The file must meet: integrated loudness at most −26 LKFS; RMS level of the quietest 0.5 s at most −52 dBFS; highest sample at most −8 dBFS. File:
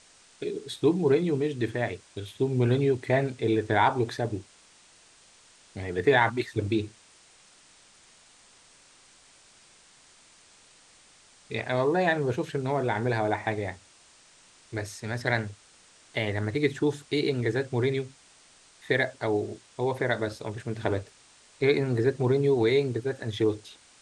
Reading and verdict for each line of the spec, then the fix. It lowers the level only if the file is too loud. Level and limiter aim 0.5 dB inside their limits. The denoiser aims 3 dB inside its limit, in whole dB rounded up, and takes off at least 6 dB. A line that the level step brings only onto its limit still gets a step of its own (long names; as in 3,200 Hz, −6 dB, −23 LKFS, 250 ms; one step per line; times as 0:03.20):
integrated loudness −27.5 LKFS: in spec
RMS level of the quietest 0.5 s −57 dBFS: in spec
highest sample −9.0 dBFS: in spec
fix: no processing needed